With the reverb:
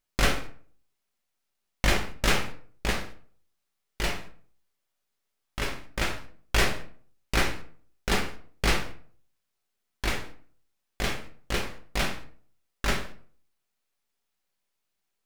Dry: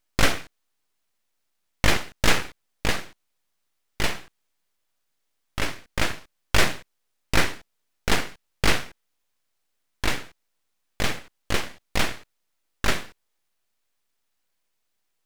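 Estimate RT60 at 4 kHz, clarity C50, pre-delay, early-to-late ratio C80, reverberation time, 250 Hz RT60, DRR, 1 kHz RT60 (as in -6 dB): 0.30 s, 10.5 dB, 5 ms, 14.5 dB, 0.50 s, 0.55 s, 3.0 dB, 0.45 s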